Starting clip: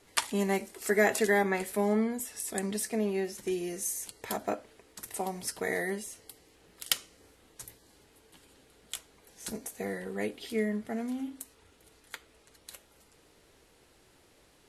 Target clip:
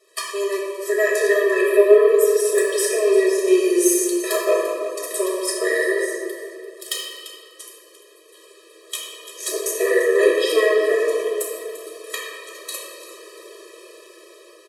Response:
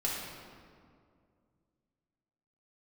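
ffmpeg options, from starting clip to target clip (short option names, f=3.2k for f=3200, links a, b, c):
-filter_complex "[0:a]aecho=1:1:344|688|1032:0.15|0.0584|0.0228,dynaudnorm=f=300:g=13:m=15dB,asoftclip=type=tanh:threshold=-12.5dB,asettb=1/sr,asplit=3[a][b][c];[a]atrim=end=1.584[d];[b]atrim=start=1.58:end=2.09,asetpts=PTS-STARTPTS,afade=t=in:d=0.004:c=qsin,afade=t=out:st=0.506:d=0.004:c=qsin,equalizer=f=400:t=o:w=0.67:g=9,equalizer=f=2.5k:t=o:w=0.67:g=9,equalizer=f=6.3k:t=o:w=0.67:g=-12[e];[c]atrim=start=2.086[f];[d][e]acrossfade=d=0.004:c1=hsin:c2=qsin[g];[g][f]acrossfade=d=0.004:c1=qsin:c2=hsin[h];[1:a]atrim=start_sample=2205,asetrate=42336,aresample=44100[i];[h][i]afir=irnorm=-1:irlink=0,afftfilt=real='re*eq(mod(floor(b*sr/1024/330),2),1)':imag='im*eq(mod(floor(b*sr/1024/330),2),1)':win_size=1024:overlap=0.75,volume=2.5dB"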